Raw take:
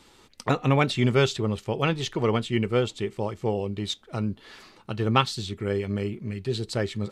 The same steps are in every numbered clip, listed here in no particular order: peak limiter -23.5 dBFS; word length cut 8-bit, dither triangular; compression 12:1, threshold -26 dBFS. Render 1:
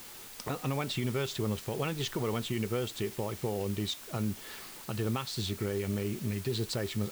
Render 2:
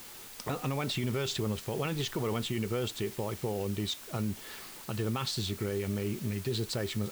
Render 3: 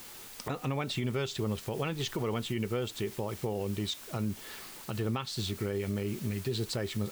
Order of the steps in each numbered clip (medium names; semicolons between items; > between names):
compression > peak limiter > word length cut; peak limiter > word length cut > compression; word length cut > compression > peak limiter